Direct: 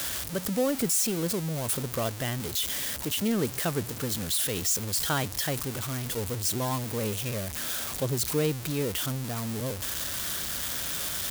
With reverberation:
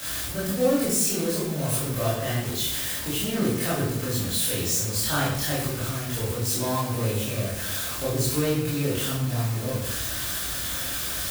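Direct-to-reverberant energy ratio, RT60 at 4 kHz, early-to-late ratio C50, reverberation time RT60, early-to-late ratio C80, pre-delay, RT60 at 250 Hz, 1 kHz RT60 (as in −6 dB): −10.0 dB, 0.60 s, 0.5 dB, 0.80 s, 4.5 dB, 18 ms, 1.0 s, 0.75 s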